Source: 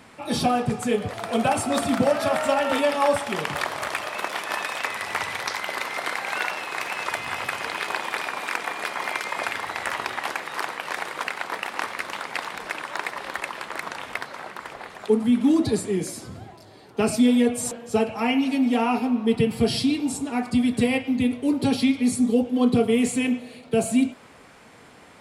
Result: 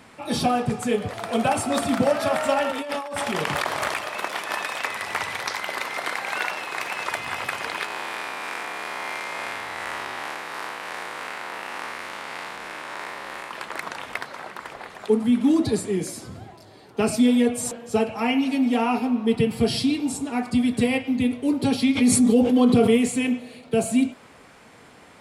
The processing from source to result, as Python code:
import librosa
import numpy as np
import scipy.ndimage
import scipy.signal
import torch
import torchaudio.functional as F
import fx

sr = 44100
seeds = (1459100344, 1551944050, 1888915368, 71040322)

y = fx.over_compress(x, sr, threshold_db=-28.0, ratio=-1.0, at=(2.7, 3.97), fade=0.02)
y = fx.spec_blur(y, sr, span_ms=171.0, at=(7.85, 13.51))
y = fx.env_flatten(y, sr, amount_pct=70, at=(21.95, 22.96), fade=0.02)